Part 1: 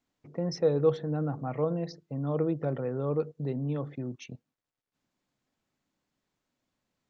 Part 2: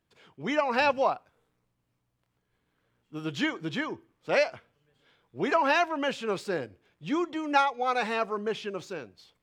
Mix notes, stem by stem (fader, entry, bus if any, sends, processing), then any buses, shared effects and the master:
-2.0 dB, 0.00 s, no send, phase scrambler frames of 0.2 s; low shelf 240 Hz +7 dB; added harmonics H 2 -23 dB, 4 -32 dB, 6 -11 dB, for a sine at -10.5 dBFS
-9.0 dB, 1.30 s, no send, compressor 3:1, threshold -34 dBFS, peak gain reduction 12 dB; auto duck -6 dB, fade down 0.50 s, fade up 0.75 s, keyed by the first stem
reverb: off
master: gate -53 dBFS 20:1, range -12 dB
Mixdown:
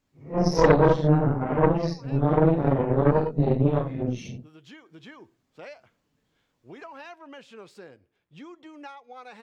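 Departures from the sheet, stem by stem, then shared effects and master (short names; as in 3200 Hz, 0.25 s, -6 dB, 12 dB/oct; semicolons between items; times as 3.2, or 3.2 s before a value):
stem 1 -2.0 dB -> +4.5 dB; master: missing gate -53 dBFS 20:1, range -12 dB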